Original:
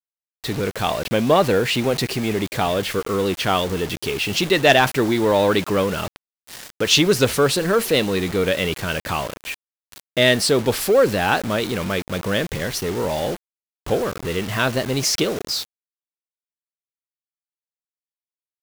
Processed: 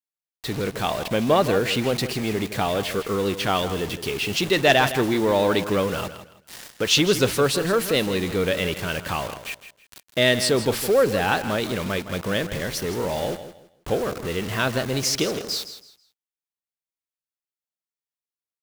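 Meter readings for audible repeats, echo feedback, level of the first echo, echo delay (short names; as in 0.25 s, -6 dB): 2, 26%, -12.0 dB, 0.162 s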